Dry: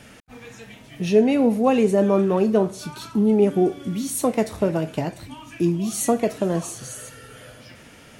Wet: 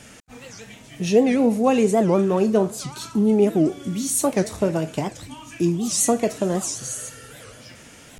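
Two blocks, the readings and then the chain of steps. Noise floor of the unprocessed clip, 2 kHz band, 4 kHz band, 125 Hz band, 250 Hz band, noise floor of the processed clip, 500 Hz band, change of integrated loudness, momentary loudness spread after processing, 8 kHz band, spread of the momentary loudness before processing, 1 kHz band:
−47 dBFS, +1.0 dB, +3.5 dB, 0.0 dB, 0.0 dB, −46 dBFS, −0.5 dB, 0.0 dB, 18 LU, +6.5 dB, 15 LU, +0.5 dB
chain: parametric band 7,200 Hz +8.5 dB 0.94 octaves
wow of a warped record 78 rpm, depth 250 cents

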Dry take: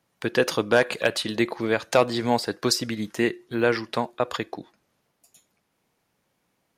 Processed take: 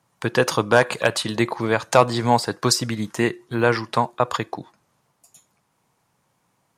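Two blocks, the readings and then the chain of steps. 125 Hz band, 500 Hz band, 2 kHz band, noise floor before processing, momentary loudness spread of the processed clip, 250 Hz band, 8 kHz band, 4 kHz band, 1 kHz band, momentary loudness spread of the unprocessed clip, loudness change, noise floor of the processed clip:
+8.5 dB, +2.5 dB, +3.0 dB, −74 dBFS, 7 LU, +2.0 dB, +5.5 dB, +2.5 dB, +7.0 dB, 8 LU, +3.5 dB, −69 dBFS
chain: octave-band graphic EQ 125/1,000/8,000 Hz +9/+9/+7 dB

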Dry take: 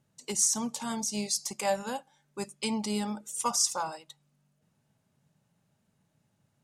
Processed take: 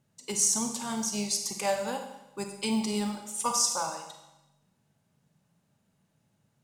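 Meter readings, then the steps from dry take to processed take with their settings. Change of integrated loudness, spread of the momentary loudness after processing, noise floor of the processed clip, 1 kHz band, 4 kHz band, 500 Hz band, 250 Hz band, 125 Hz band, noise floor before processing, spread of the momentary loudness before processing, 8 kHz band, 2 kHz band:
+1.5 dB, 15 LU, −74 dBFS, +1.0 dB, +1.0 dB, +1.5 dB, +2.0 dB, +1.5 dB, −75 dBFS, 14 LU, +1.5 dB, +1.5 dB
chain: four-comb reverb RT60 0.94 s, combs from 32 ms, DRR 5 dB
floating-point word with a short mantissa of 4 bits

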